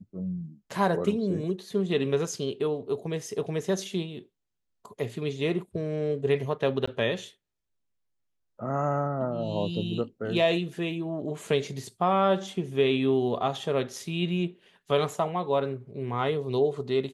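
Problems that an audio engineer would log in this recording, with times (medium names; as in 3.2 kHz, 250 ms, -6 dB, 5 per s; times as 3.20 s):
6.86–6.88 s: dropout 15 ms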